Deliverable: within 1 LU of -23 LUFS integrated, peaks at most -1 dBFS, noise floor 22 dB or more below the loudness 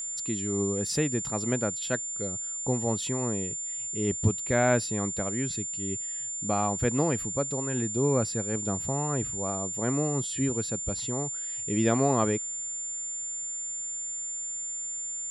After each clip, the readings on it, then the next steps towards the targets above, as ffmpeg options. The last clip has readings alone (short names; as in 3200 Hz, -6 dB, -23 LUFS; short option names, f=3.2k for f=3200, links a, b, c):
steady tone 7200 Hz; tone level -32 dBFS; loudness -28.5 LUFS; peak -12.5 dBFS; loudness target -23.0 LUFS
-> -af "bandreject=f=7.2k:w=30"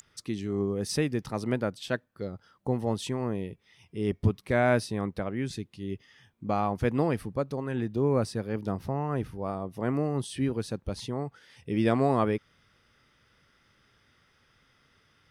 steady tone none; loudness -30.5 LUFS; peak -13.0 dBFS; loudness target -23.0 LUFS
-> -af "volume=7.5dB"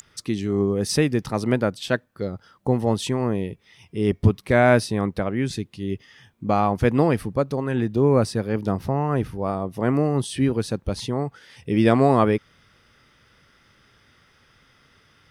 loudness -23.0 LUFS; peak -5.5 dBFS; noise floor -59 dBFS